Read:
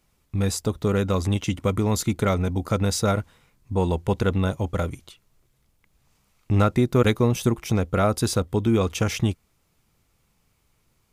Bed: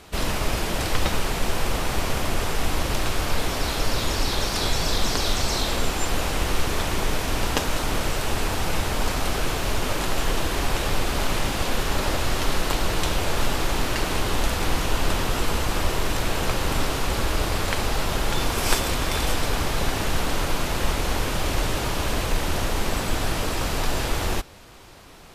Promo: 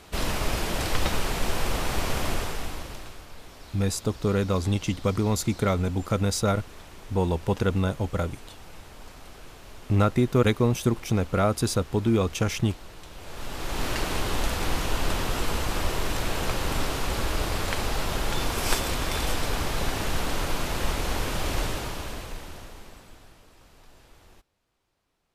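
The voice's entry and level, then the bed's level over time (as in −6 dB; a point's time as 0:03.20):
3.40 s, −2.0 dB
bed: 0:02.31 −2.5 dB
0:03.28 −21 dB
0:13.09 −21 dB
0:13.86 −3.5 dB
0:21.62 −3.5 dB
0:23.43 −29.5 dB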